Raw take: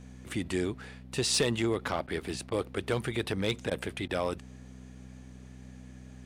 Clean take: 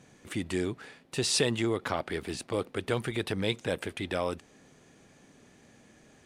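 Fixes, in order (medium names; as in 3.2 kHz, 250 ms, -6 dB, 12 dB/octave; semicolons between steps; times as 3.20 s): clip repair -19.5 dBFS; de-hum 63.3 Hz, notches 4; interpolate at 2.07/2.50/3.70/4.08 s, 11 ms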